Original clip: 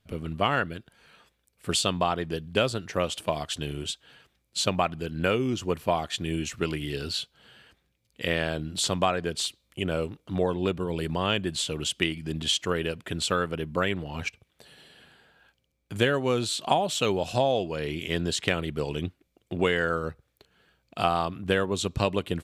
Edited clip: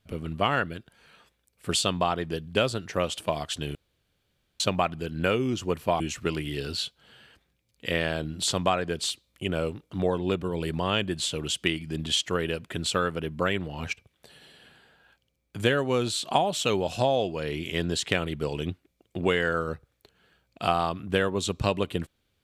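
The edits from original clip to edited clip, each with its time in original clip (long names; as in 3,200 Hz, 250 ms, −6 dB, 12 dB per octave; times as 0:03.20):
0:03.75–0:04.60: fill with room tone
0:06.00–0:06.36: remove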